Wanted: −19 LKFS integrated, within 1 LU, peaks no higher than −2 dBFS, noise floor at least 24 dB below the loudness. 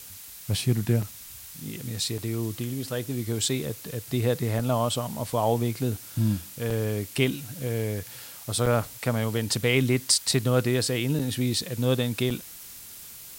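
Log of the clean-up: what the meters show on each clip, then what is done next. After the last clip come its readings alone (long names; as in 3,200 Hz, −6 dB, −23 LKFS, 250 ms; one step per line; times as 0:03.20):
number of dropouts 7; longest dropout 4.8 ms; background noise floor −44 dBFS; target noise floor −51 dBFS; integrated loudness −27.0 LKFS; sample peak −8.0 dBFS; target loudness −19.0 LKFS
→ repair the gap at 0:01.02/0:02.18/0:04.59/0:06.70/0:08.66/0:11.19/0:12.30, 4.8 ms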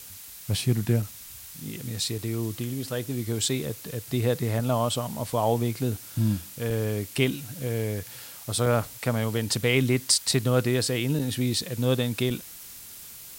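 number of dropouts 0; background noise floor −44 dBFS; target noise floor −51 dBFS
→ broadband denoise 7 dB, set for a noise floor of −44 dBFS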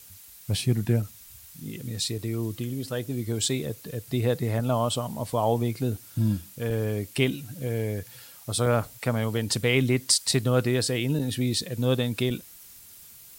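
background noise floor −49 dBFS; target noise floor −51 dBFS
→ broadband denoise 6 dB, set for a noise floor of −49 dBFS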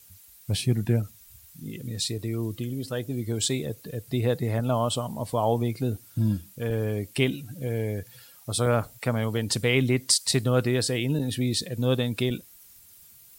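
background noise floor −53 dBFS; integrated loudness −27.0 LKFS; sample peak −8.0 dBFS; target loudness −19.0 LKFS
→ level +8 dB
brickwall limiter −2 dBFS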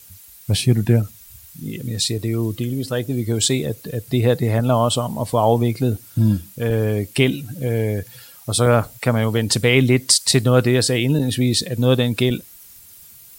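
integrated loudness −19.0 LKFS; sample peak −2.0 dBFS; background noise floor −45 dBFS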